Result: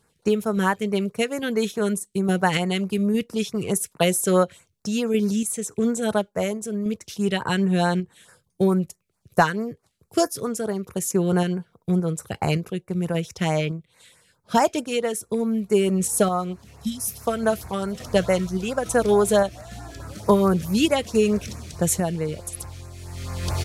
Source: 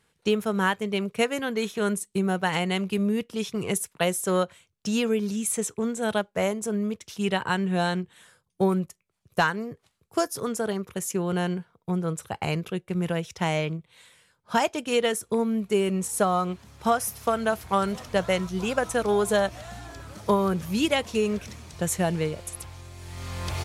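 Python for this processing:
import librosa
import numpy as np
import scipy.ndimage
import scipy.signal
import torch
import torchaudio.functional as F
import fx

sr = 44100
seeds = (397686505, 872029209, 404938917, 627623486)

y = fx.spec_repair(x, sr, seeds[0], start_s=16.7, length_s=0.41, low_hz=270.0, high_hz=3000.0, source='after')
y = fx.tremolo_random(y, sr, seeds[1], hz=3.5, depth_pct=55)
y = fx.filter_lfo_notch(y, sr, shape='sine', hz=4.6, low_hz=860.0, high_hz=3400.0, q=0.78)
y = F.gain(torch.from_numpy(y), 7.0).numpy()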